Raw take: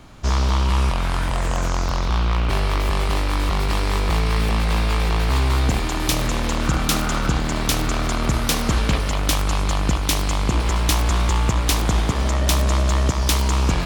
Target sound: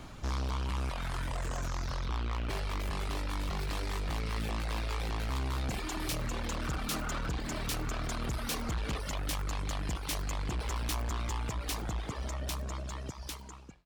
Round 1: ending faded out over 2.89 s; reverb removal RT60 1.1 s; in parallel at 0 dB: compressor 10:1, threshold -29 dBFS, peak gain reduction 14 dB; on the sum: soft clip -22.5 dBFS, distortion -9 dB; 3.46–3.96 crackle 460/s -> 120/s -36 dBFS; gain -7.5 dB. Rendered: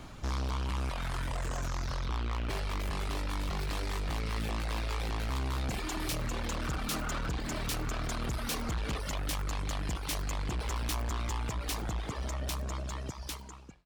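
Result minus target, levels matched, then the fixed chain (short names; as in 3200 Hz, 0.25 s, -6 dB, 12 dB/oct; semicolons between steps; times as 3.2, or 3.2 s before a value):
compressor: peak gain reduction -7 dB
ending faded out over 2.89 s; reverb removal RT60 1.1 s; in parallel at 0 dB: compressor 10:1, threshold -37 dBFS, peak gain reduction 21.5 dB; on the sum: soft clip -22.5 dBFS, distortion -10 dB; 3.46–3.96 crackle 460/s -> 120/s -36 dBFS; gain -7.5 dB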